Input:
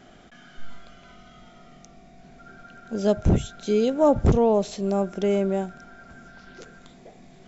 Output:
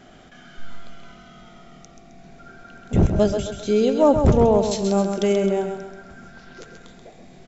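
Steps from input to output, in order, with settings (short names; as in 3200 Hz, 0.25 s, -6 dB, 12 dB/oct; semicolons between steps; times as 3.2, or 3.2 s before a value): 2.93–3.39 reverse; 4.71–5.33 high shelf 3500 Hz +11 dB; feedback echo 0.132 s, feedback 42%, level -7 dB; gain +2.5 dB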